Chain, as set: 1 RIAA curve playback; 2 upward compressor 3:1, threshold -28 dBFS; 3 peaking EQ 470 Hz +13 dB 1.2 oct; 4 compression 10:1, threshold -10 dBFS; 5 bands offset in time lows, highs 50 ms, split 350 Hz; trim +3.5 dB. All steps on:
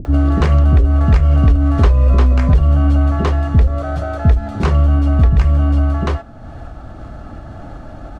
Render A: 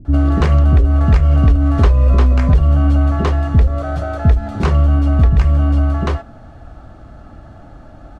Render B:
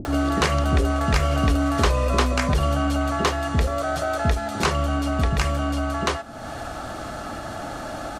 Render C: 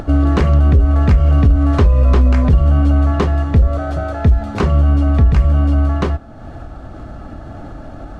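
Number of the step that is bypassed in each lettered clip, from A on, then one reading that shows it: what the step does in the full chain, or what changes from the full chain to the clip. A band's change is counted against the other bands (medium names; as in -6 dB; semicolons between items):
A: 2, momentary loudness spread change -16 LU; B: 1, 125 Hz band -12.5 dB; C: 5, echo-to-direct 19.5 dB to none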